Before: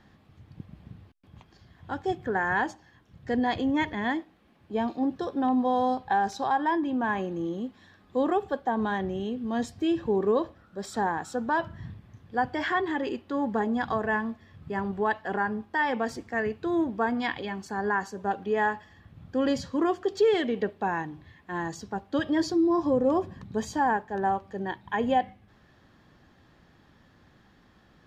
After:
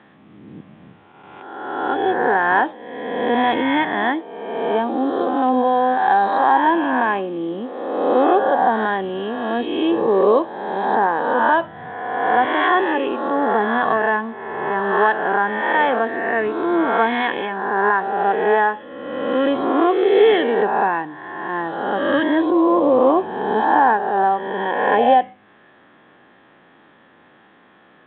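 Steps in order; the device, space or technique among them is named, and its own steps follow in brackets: spectral swells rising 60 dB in 1.53 s; dynamic EQ 2000 Hz, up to -4 dB, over -44 dBFS, Q 2.4; telephone (BPF 310–3300 Hz; gain +8.5 dB; µ-law 64 kbps 8000 Hz)

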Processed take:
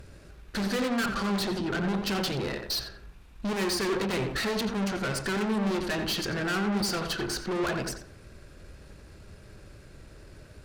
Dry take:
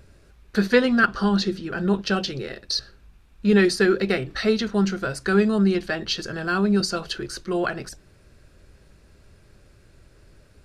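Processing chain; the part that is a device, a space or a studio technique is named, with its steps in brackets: rockabilly slapback (tube stage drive 33 dB, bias 0.5; tape echo 87 ms, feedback 35%, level -3.5 dB, low-pass 2000 Hz); gain +5.5 dB

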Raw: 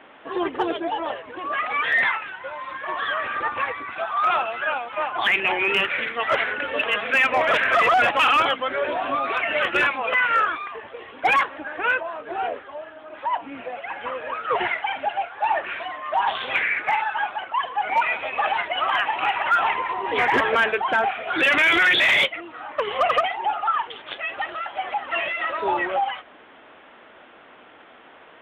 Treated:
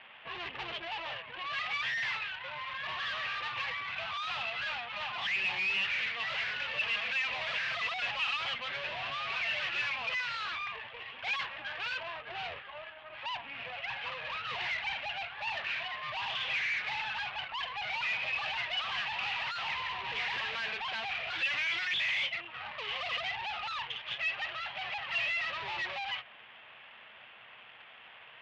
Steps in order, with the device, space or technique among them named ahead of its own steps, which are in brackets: scooped metal amplifier (tube stage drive 34 dB, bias 0.75; speaker cabinet 80–3700 Hz, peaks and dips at 130 Hz +9 dB, 220 Hz +8 dB, 330 Hz +5 dB, 1400 Hz -5 dB, 2700 Hz +4 dB; passive tone stack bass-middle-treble 10-0-10); gain +7 dB

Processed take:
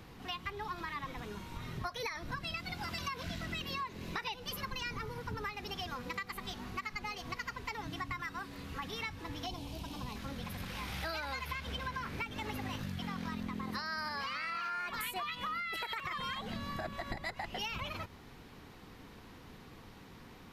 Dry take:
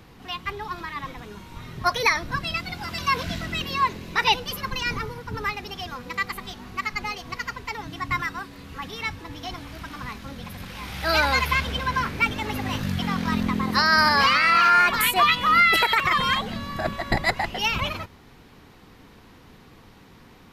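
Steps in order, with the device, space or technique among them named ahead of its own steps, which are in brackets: 9.46–10.16 band shelf 1600 Hz -13.5 dB 1.1 oct; serial compression, leveller first (compressor 3:1, threshold -23 dBFS, peak gain reduction 8 dB; compressor, threshold -33 dBFS, peak gain reduction 12 dB); gain -3.5 dB

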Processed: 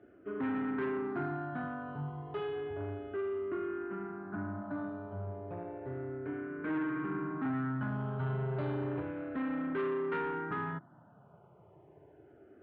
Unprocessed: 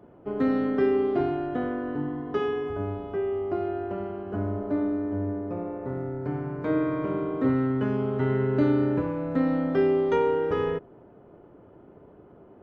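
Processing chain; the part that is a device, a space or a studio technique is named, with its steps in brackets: barber-pole phaser into a guitar amplifier (endless phaser -0.32 Hz; soft clip -26 dBFS, distortion -12 dB; speaker cabinet 92–3500 Hz, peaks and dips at 150 Hz +4 dB, 230 Hz -3 dB, 500 Hz -8 dB, 1500 Hz +8 dB); gain -3 dB

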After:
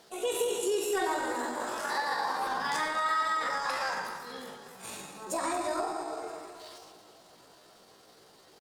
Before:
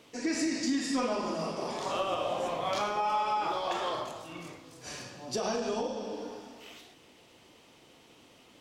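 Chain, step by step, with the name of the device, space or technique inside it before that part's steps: 1.83–2.41 HPF 150 Hz 12 dB/oct; feedback echo 0.968 s, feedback 28%, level -23 dB; chipmunk voice (pitch shift +7 st); echo with dull and thin repeats by turns 0.116 s, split 1300 Hz, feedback 55%, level -7.5 dB

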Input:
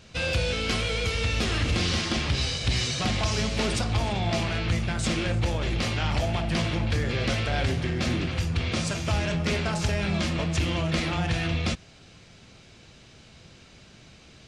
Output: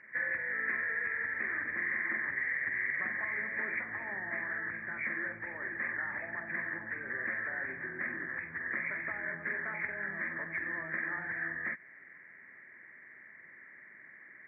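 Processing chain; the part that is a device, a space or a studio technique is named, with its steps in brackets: hearing aid with frequency lowering (nonlinear frequency compression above 1500 Hz 4:1; compressor 4:1, threshold -27 dBFS, peak gain reduction 6.5 dB; speaker cabinet 390–5500 Hz, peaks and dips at 480 Hz -8 dB, 730 Hz -9 dB, 1800 Hz +6 dB, 3400 Hz -8 dB); gain -5.5 dB

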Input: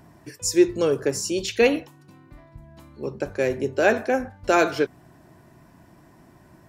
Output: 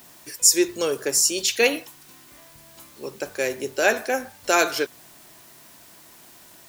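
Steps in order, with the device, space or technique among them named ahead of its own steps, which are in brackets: turntable without a phono preamp (RIAA curve recording; white noise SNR 25 dB)

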